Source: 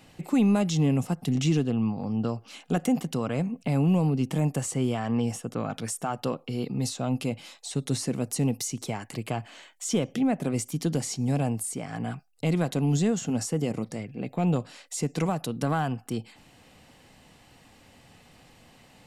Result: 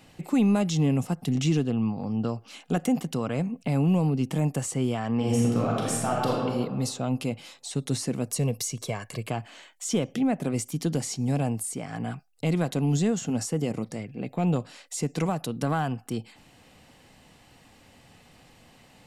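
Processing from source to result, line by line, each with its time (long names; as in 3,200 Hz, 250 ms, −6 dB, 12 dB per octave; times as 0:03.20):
0:05.16–0:06.33: thrown reverb, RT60 1.6 s, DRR −4 dB
0:08.31–0:09.28: comb filter 1.8 ms, depth 57%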